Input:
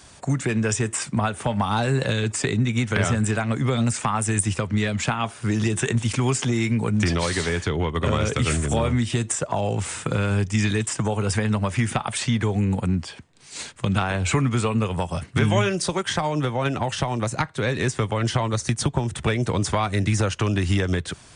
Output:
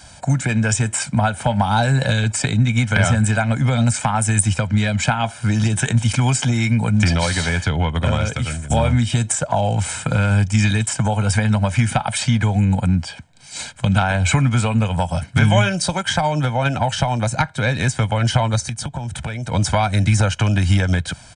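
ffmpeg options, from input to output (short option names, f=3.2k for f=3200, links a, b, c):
-filter_complex "[0:a]asettb=1/sr,asplit=3[a][b][c];[a]atrim=end=18.604[d];[b]atrim=start=18.6:end=19.52,asetpts=PTS-STARTPTS,afade=t=in:d=0.004:c=qsin,afade=t=out:st=0.916:d=0.004:c=qsin,acompressor=threshold=-30dB:ratio=3:attack=3.2:release=140:knee=1:detection=peak[e];[c]atrim=start=19.516[f];[d][e]acrossfade=d=0.004:c1=hsin:c2=qsin[g];[g][f]acrossfade=d=0.004:c1=qsin:c2=hsin,asplit=2[h][i];[h]atrim=end=8.7,asetpts=PTS-STARTPTS,afade=t=out:st=7.97:d=0.73:silence=0.199526[j];[i]atrim=start=8.7,asetpts=PTS-STARTPTS,afade=t=in:d=0.004:c=hsin:silence=0.199526[k];[j][k]concat=n=2:v=0:a=1,aecho=1:1:1.3:0.71,volume=3dB"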